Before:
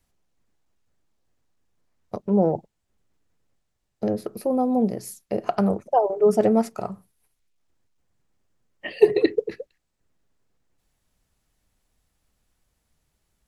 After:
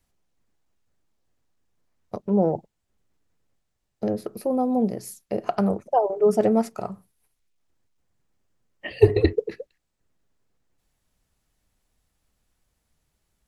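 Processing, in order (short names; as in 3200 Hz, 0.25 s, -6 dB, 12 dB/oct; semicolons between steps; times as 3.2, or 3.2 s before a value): 8.9–9.33 octaver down 2 oct, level +2 dB; gain -1 dB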